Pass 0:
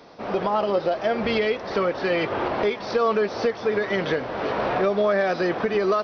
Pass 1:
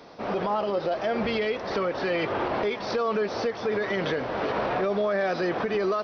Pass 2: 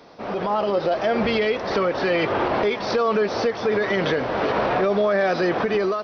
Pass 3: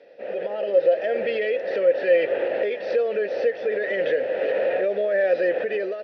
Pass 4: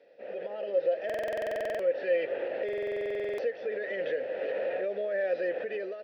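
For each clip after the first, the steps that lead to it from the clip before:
peak limiter -18.5 dBFS, peak gain reduction 6.5 dB
level rider gain up to 5.5 dB
vowel filter e; trim +7 dB
buffer glitch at 1.05/2.64 s, samples 2048, times 15; trim -9 dB

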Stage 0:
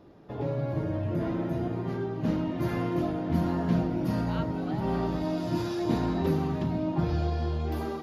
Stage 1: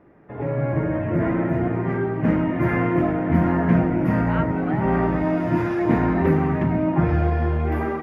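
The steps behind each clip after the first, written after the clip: level rider gain up to 8 dB; resonant high shelf 2.9 kHz -12.5 dB, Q 3; hum notches 50/100 Hz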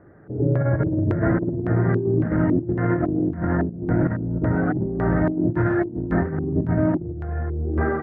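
fifteen-band graphic EQ 100 Hz +8 dB, 250 Hz -3 dB, 1 kHz -9 dB, 2.5 kHz -12 dB; LFO low-pass square 1.8 Hz 350–1600 Hz; compressor with a negative ratio -21 dBFS, ratio -0.5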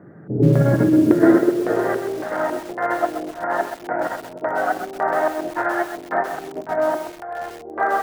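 high-pass sweep 160 Hz -> 730 Hz, 0.38–2.25 s; bit-crushed delay 129 ms, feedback 35%, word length 6-bit, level -8 dB; trim +3.5 dB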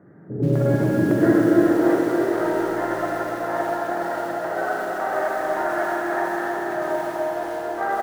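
feedback delay 284 ms, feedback 57%, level -6 dB; reverberation RT60 4.5 s, pre-delay 41 ms, DRR -2.5 dB; trim -6.5 dB

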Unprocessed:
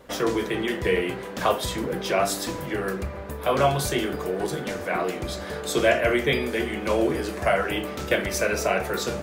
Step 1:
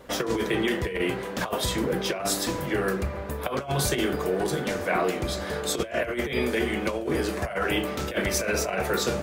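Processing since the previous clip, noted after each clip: compressor with a negative ratio -25 dBFS, ratio -0.5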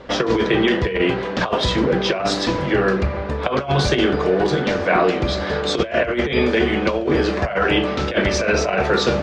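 low-pass 5.1 kHz 24 dB/octave; dynamic bell 2.1 kHz, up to -3 dB, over -43 dBFS, Q 6.3; trim +8.5 dB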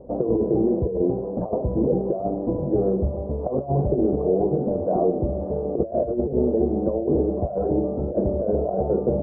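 steep low-pass 720 Hz 36 dB/octave; trim -2.5 dB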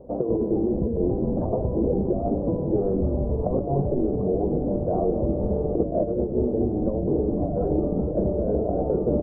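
on a send: frequency-shifting echo 208 ms, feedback 59%, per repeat -130 Hz, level -5 dB; on the sum: gain riding 0.5 s; trim -2.5 dB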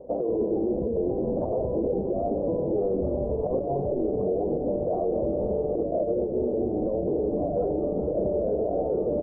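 peaking EQ 550 Hz +11.5 dB 1.8 oct; peak limiter -10 dBFS, peak gain reduction 8.5 dB; trim -8 dB

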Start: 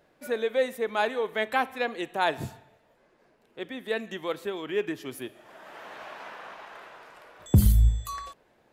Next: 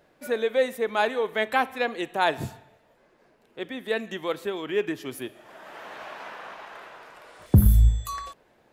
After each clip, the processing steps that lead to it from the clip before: spectral replace 7.25–7.72 s, 1.8–10 kHz both; trim +2.5 dB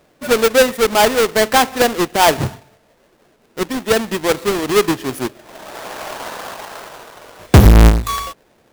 square wave that keeps the level; waveshaping leveller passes 1; trim +4 dB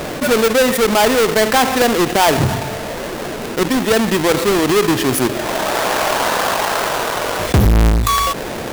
level flattener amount 70%; trim -6.5 dB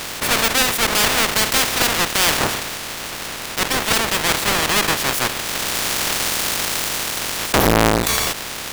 spectral peaks clipped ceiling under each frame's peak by 23 dB; trim -4 dB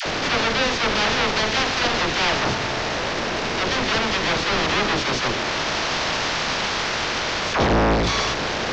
one-bit delta coder 32 kbps, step -16 dBFS; phase dispersion lows, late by 60 ms, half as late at 640 Hz; trim -2.5 dB

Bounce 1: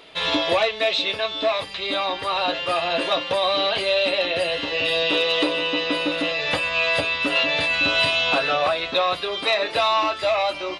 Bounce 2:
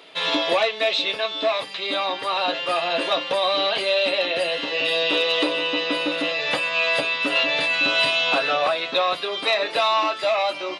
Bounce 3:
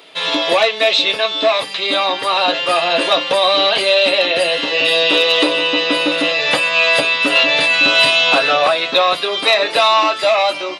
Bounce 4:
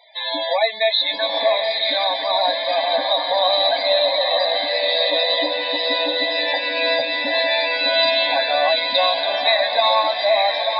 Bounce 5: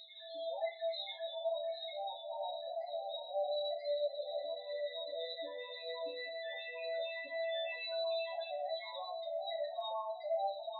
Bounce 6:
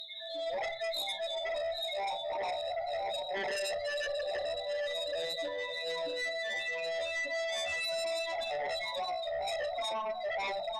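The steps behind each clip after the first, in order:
Bessel high-pass 200 Hz, order 4
level rider gain up to 4.5 dB; treble shelf 7.2 kHz +7.5 dB; trim +3 dB
static phaser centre 1.9 kHz, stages 8; loudest bins only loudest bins 32; echo that smears into a reverb 897 ms, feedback 41%, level -3.5 dB; trim -2 dB
loudest bins only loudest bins 4; chord resonator C2 major, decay 0.38 s; reverse echo 985 ms -12 dB; trim -8 dB
on a send at -8 dB: valve stage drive 32 dB, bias 0.35 + reverberation RT60 0.40 s, pre-delay 5 ms; on the sum: sine folder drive 11 dB, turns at -26.5 dBFS; trim -5 dB

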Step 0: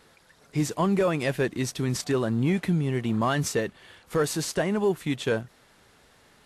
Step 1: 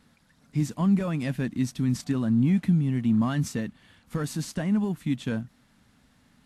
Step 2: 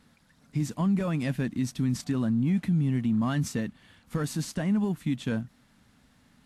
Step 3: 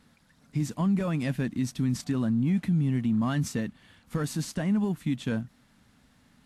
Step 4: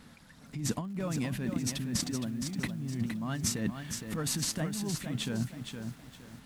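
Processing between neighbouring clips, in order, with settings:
resonant low shelf 310 Hz +7 dB, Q 3; trim -7 dB
peak limiter -19 dBFS, peak gain reduction 5 dB
no audible change
compressor with a negative ratio -34 dBFS, ratio -1; bit-crushed delay 465 ms, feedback 35%, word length 9-bit, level -6.5 dB

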